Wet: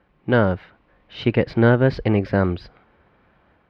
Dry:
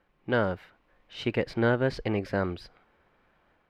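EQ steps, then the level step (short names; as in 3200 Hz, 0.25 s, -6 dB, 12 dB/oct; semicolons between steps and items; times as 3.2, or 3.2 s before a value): HPF 43 Hz; air absorption 320 m; tone controls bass +4 dB, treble +10 dB; +8.5 dB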